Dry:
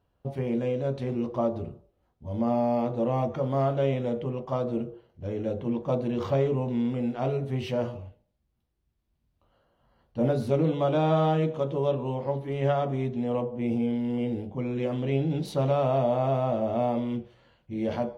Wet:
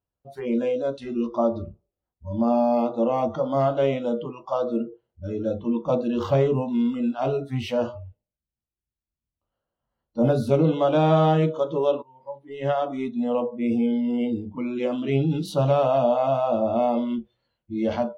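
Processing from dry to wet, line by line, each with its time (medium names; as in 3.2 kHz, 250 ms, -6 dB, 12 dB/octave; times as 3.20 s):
12.02–12.98 s: fade in, from -22 dB
whole clip: spectral noise reduction 21 dB; trim +5 dB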